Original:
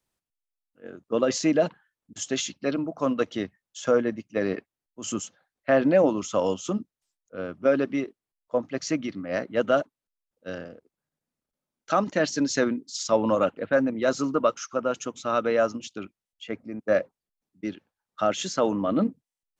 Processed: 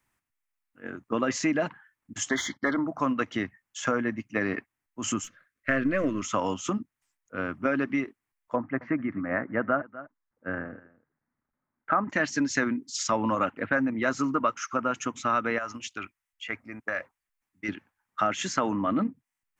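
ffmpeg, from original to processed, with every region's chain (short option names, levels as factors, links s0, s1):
-filter_complex "[0:a]asettb=1/sr,asplit=3[s0][s1][s2];[s0]atrim=end=2.294[s3];[s1]atrim=start=2.29:end=2.87,asetpts=PTS-STARTPTS,afade=t=in:d=0.004:c=qsin,afade=t=out:st=0.576:d=0.004:c=qsin,agate=range=0.141:threshold=0.00178:ratio=16:release=100:detection=peak,asplit=2[s4][s5];[s5]highpass=f=720:p=1,volume=5.01,asoftclip=type=tanh:threshold=0.211[s6];[s4][s6]amix=inputs=2:normalize=0,lowpass=f=2200:p=1,volume=0.501,asuperstop=centerf=2600:order=8:qfactor=2.6[s7];[s2]atrim=start=2.866[s8];[s3][s7]acrossfade=d=0.004:c1=hsin:c2=qsin[s9];[s9][s8]acrossfade=d=0.004:c1=qsin:c2=hsin,asettb=1/sr,asplit=3[s10][s11][s12];[s10]atrim=end=5.244[s13];[s11]atrim=start=5.24:end=6.22,asetpts=PTS-STARTPTS,afade=t=in:d=0.004:c=qsin,afade=t=out:st=0.976:d=0.004:c=qsin,aeval=exprs='if(lt(val(0),0),0.708*val(0),val(0))':c=same,asuperstop=centerf=840:order=4:qfactor=1.8[s14];[s12]atrim=start=6.216[s15];[s13][s14]acrossfade=d=0.004:c1=hsin:c2=qsin[s16];[s16][s15]acrossfade=d=0.004:c1=qsin:c2=hsin,asettb=1/sr,asplit=3[s17][s18][s19];[s17]atrim=end=8.564[s20];[s18]atrim=start=8.56:end=12.1,asetpts=PTS-STARTPTS,afade=t=in:d=0.004:c=qsin,afade=t=out:st=3.536:d=0.004:c=qsin,lowpass=f=1800:w=0.5412,lowpass=f=1800:w=1.3066,aecho=1:1:248:0.075,atrim=end_sample=156114[s21];[s19]atrim=start=12.096[s22];[s20][s21]acrossfade=d=0.004:c1=hsin:c2=qsin[s23];[s23][s22]acrossfade=d=0.004:c1=qsin:c2=hsin,asettb=1/sr,asplit=3[s24][s25][s26];[s24]atrim=end=15.584[s27];[s25]atrim=start=15.58:end=17.69,asetpts=PTS-STARTPTS,afade=t=in:d=0.004:c=qsin,afade=t=out:st=2.106:d=0.004:c=qsin,equalizer=f=210:t=o:w=2.6:g=-12.5,acompressor=threshold=0.0282:ratio=4:attack=3.2:release=140:knee=1:detection=peak[s28];[s26]atrim=start=17.686[s29];[s27][s28]acrossfade=d=0.004:c1=hsin:c2=qsin[s30];[s30][s29]acrossfade=d=0.004:c1=qsin:c2=hsin,equalizer=f=125:t=o:w=1:g=6,equalizer=f=250:t=o:w=1:g=5,equalizer=f=500:t=o:w=1:g=-8,equalizer=f=1000:t=o:w=1:g=5,equalizer=f=2000:t=o:w=1:g=9,equalizer=f=4000:t=o:w=1:g=-7,acompressor=threshold=0.0398:ratio=2.5,equalizer=f=170:w=1.7:g=-6.5,volume=1.5"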